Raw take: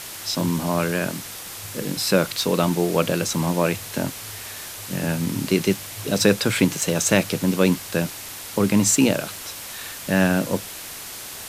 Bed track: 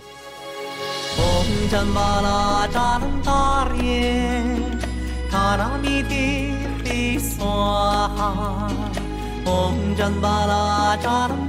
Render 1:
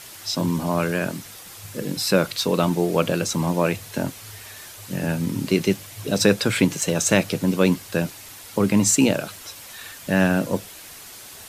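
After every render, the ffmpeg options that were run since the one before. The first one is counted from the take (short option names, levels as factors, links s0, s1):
-af "afftdn=nr=7:nf=-36"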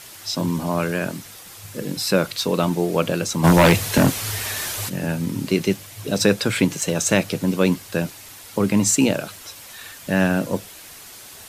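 -filter_complex "[0:a]asplit=3[s0][s1][s2];[s0]afade=t=out:st=3.43:d=0.02[s3];[s1]aeval=exprs='0.422*sin(PI/2*2.82*val(0)/0.422)':c=same,afade=t=in:st=3.43:d=0.02,afade=t=out:st=4.88:d=0.02[s4];[s2]afade=t=in:st=4.88:d=0.02[s5];[s3][s4][s5]amix=inputs=3:normalize=0"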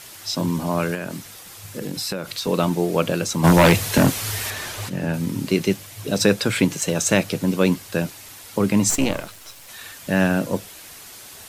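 -filter_complex "[0:a]asettb=1/sr,asplit=3[s0][s1][s2];[s0]atrim=end=0.944[s3];[s1]atrim=start=0.94:end=2.47,asetpts=PTS-STARTPTS,afade=t=in:d=0.004:c=qsin,afade=t=out:st=1.526:d=0.004:c=qsin,acompressor=threshold=0.0708:ratio=6:attack=3.2:release=140:knee=1:detection=peak[s4];[s2]atrim=start=2.466[s5];[s3][s4]acrossfade=d=0.004:c1=hsin:c2=qsin[s6];[s6][s5]acrossfade=d=0.004:c1=qsin:c2=hsin,asettb=1/sr,asplit=3[s7][s8][s9];[s7]atrim=end=4.504[s10];[s8]atrim=start=4.5:end=5.14,asetpts=PTS-STARTPTS,afade=t=in:d=0.004:c=qsin,afade=t=out:st=0.636:d=0.004:c=qsin,aemphasis=mode=reproduction:type=cd[s11];[s9]atrim=start=5.136[s12];[s10][s11]acrossfade=d=0.004:c1=hsin:c2=qsin[s13];[s13][s12]acrossfade=d=0.004:c1=qsin:c2=hsin,asplit=3[s14][s15][s16];[s14]afade=t=out:st=8.89:d=0.02[s17];[s15]aeval=exprs='if(lt(val(0),0),0.251*val(0),val(0))':c=same,afade=t=in:st=8.89:d=0.02,afade=t=out:st=9.67:d=0.02[s18];[s16]afade=t=in:st=9.67:d=0.02[s19];[s17][s18][s19]amix=inputs=3:normalize=0"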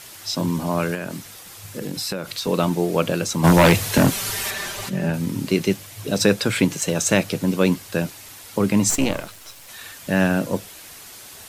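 -filter_complex "[0:a]asettb=1/sr,asplit=3[s0][s1][s2];[s0]atrim=end=4.114[s3];[s1]atrim=start=4.11:end=5.1,asetpts=PTS-STARTPTS,afade=t=in:d=0.004:c=qsin,afade=t=out:st=0.986:d=0.004:c=qsin,aecho=1:1:5.1:0.65,atrim=end_sample=43659[s4];[s2]atrim=start=5.096[s5];[s3][s4]acrossfade=d=0.004:c1=hsin:c2=qsin[s6];[s6][s5]acrossfade=d=0.004:c1=qsin:c2=hsin"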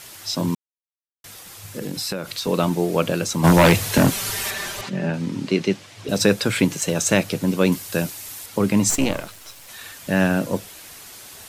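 -filter_complex "[0:a]asettb=1/sr,asplit=3[s0][s1][s2];[s0]atrim=end=4.814[s3];[s1]atrim=start=4.81:end=6.09,asetpts=PTS-STARTPTS,afade=t=in:d=0.004:c=qsin,afade=t=out:st=1.276:d=0.004:c=qsin,highpass=140,lowpass=5500[s4];[s2]atrim=start=6.086[s5];[s3][s4]acrossfade=d=0.004:c1=hsin:c2=qsin[s6];[s6][s5]acrossfade=d=0.004:c1=qsin:c2=hsin,asettb=1/sr,asplit=3[s7][s8][s9];[s7]atrim=end=7.724[s10];[s8]atrim=start=7.72:end=8.46,asetpts=PTS-STARTPTS,afade=t=in:d=0.004:c=qsin,afade=t=out:st=0.736:d=0.004:c=qsin,highshelf=f=5600:g=8.5[s11];[s9]atrim=start=8.456[s12];[s10][s11]acrossfade=d=0.004:c1=hsin:c2=qsin[s13];[s13][s12]acrossfade=d=0.004:c1=qsin:c2=hsin,asplit=3[s14][s15][s16];[s14]atrim=end=0.55,asetpts=PTS-STARTPTS,afade=t=out:st=0.546:d=0.004:c=hsin[s17];[s15]atrim=start=0.55:end=1.24,asetpts=PTS-STARTPTS,volume=0[s18];[s16]atrim=start=1.24,asetpts=PTS-STARTPTS,afade=t=in:d=0.004:c=hsin[s19];[s17][s18][s19]concat=n=3:v=0:a=1"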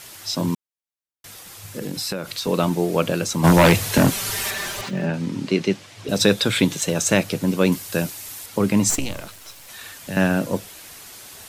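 -filter_complex "[0:a]asettb=1/sr,asplit=3[s0][s1][s2];[s0]atrim=end=4.314[s3];[s1]atrim=start=4.31:end=5.06,asetpts=PTS-STARTPTS,afade=t=in:d=0.004:c=qsin,afade=t=out:st=0.746:d=0.004:c=qsin,aeval=exprs='val(0)+0.5*0.01*sgn(val(0))':c=same[s4];[s2]atrim=start=5.056[s5];[s3][s4]acrossfade=d=0.004:c1=hsin:c2=qsin[s6];[s6][s5]acrossfade=d=0.004:c1=qsin:c2=hsin,asettb=1/sr,asplit=3[s7][s8][s9];[s7]atrim=end=6.194[s10];[s8]atrim=start=6.19:end=6.85,asetpts=PTS-STARTPTS,afade=t=in:d=0.004:c=qsin,afade=t=out:st=0.656:d=0.004:c=qsin,equalizer=f=3600:t=o:w=0.24:g=11[s11];[s9]atrim=start=6.846[s12];[s10][s11]acrossfade=d=0.004:c1=hsin:c2=qsin[s13];[s13][s12]acrossfade=d=0.004:c1=qsin:c2=hsin,asettb=1/sr,asplit=3[s14][s15][s16];[s14]atrim=end=8.994[s17];[s15]atrim=start=8.99:end=10.17,asetpts=PTS-STARTPTS,afade=t=in:d=0.004:c=qsin,afade=t=out:st=1.176:d=0.004:c=qsin,acrossover=split=130|3000[s18][s19][s20];[s19]acompressor=threshold=0.0355:ratio=6:attack=3.2:release=140:knee=2.83:detection=peak[s21];[s18][s21][s20]amix=inputs=3:normalize=0[s22];[s16]atrim=start=10.166[s23];[s17][s22]acrossfade=d=0.004:c1=hsin:c2=qsin[s24];[s24][s23]acrossfade=d=0.004:c1=qsin:c2=hsin"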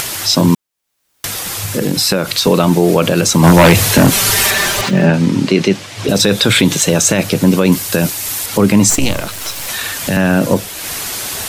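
-af "acompressor=mode=upward:threshold=0.0398:ratio=2.5,alimiter=level_in=4.73:limit=0.891:release=50:level=0:latency=1"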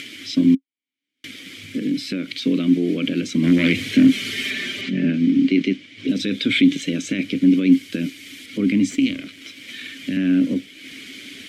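-filter_complex "[0:a]asplit=2[s0][s1];[s1]aeval=exprs='val(0)*gte(abs(val(0)),0.1)':c=same,volume=0.447[s2];[s0][s2]amix=inputs=2:normalize=0,asplit=3[s3][s4][s5];[s3]bandpass=f=270:t=q:w=8,volume=1[s6];[s4]bandpass=f=2290:t=q:w=8,volume=0.501[s7];[s5]bandpass=f=3010:t=q:w=8,volume=0.355[s8];[s6][s7][s8]amix=inputs=3:normalize=0"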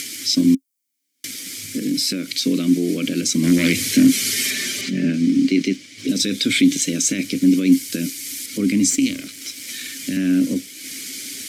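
-af "aexciter=amount=7:drive=4.9:freq=4600"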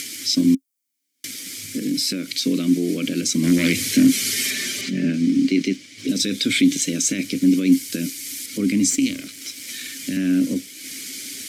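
-af "volume=0.841"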